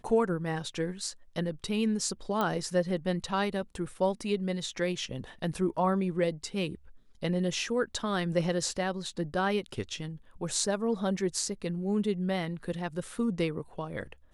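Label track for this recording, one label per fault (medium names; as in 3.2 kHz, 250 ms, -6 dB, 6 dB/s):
2.410000	2.410000	pop -16 dBFS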